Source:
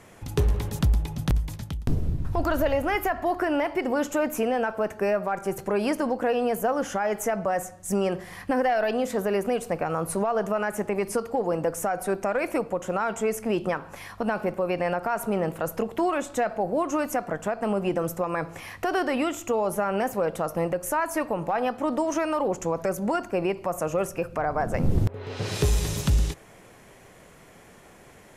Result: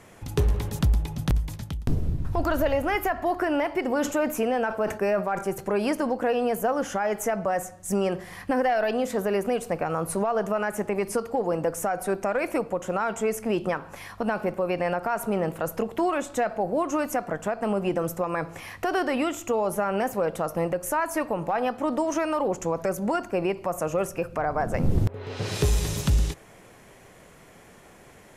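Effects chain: 3.92–5.49 sustainer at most 120 dB/s

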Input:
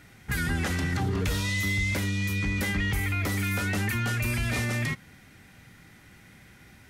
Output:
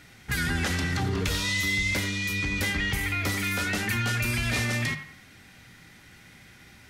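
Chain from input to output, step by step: bell 4300 Hz +5.5 dB 1.8 oct; notches 50/100/150/200 Hz; on a send: narrowing echo 90 ms, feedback 42%, band-pass 1300 Hz, level -9 dB

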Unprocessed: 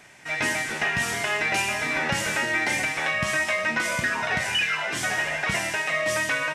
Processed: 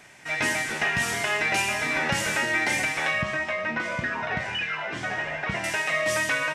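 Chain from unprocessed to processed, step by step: 3.22–5.64 tape spacing loss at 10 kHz 22 dB

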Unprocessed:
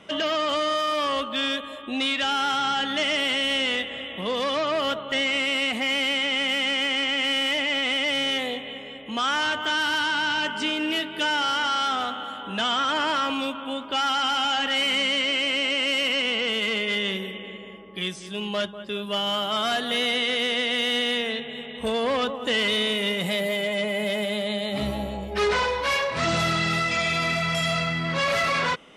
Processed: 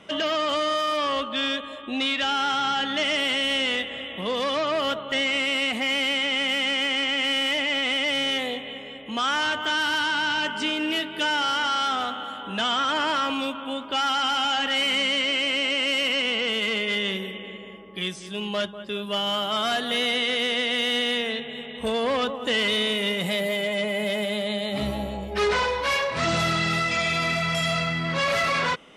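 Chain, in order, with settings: 0.97–3.05 LPF 7800 Hz 12 dB/oct

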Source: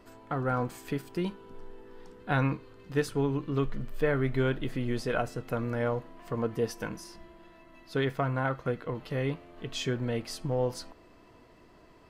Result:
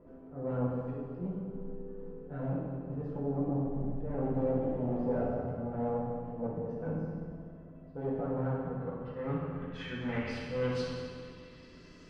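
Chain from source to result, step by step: bell 820 Hz -13.5 dB 0.8 oct; auto swell 0.207 s; hard clip -36 dBFS, distortion -5 dB; low-pass sweep 700 Hz -> 6300 Hz, 8.35–12.01; reverb RT60 2.0 s, pre-delay 3 ms, DRR -6.5 dB; gain -3 dB

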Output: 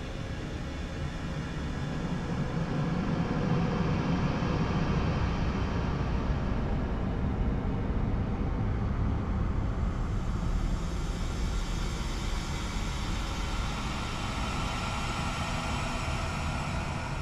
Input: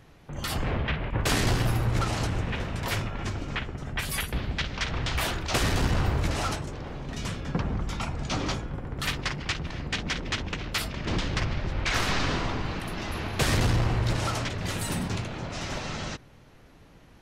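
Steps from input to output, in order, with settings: Paulstretch 25×, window 0.25 s, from 7.41; gain -1 dB

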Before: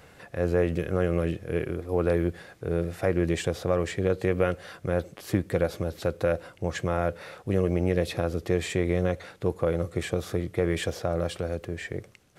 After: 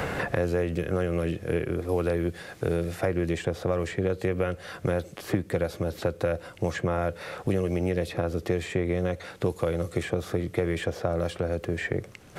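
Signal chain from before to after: three-band squash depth 100%; gain -1.5 dB

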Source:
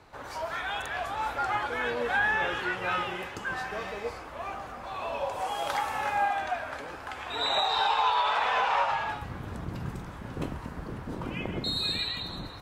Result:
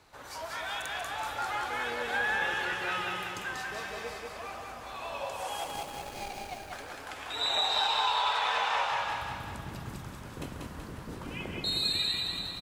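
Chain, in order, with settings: 5.64–6.72 median filter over 41 samples; high shelf 3100 Hz +11.5 dB; feedback echo 0.189 s, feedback 54%, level -3.5 dB; gain -7 dB

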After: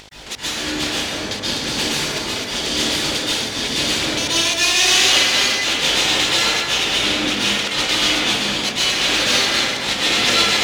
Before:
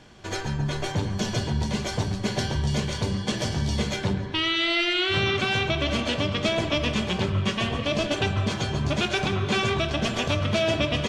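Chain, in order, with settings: on a send: split-band echo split 1700 Hz, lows 0.195 s, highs 0.148 s, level -12.5 dB; on the sum: full-wave rectifier; high shelf 7100 Hz +5 dB; upward compressor, threshold -37 dBFS; weighting filter D; buzz 50 Hz, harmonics 20, -45 dBFS -2 dB/oct; speed mistake 24 fps film run at 25 fps; step gate "x..x.xxxxx.x" 172 bpm -60 dB; plate-style reverb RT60 2.2 s, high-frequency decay 0.5×, pre-delay 0.11 s, DRR -9 dB; gain -2.5 dB

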